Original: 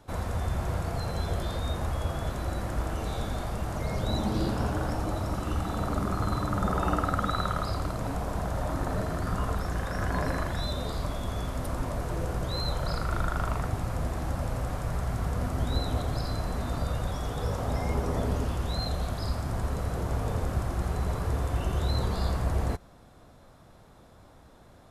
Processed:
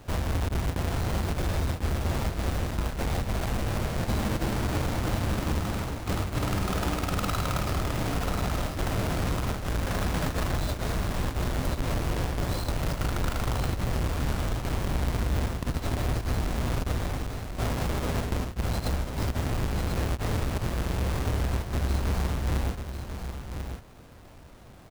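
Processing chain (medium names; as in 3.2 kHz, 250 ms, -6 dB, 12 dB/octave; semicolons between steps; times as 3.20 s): square wave that keeps the level; gain riding 2 s; peak limiter -19 dBFS, peak gain reduction 44 dB; compression, threshold -25 dBFS, peak gain reduction 5 dB; on a send: delay 1043 ms -7.5 dB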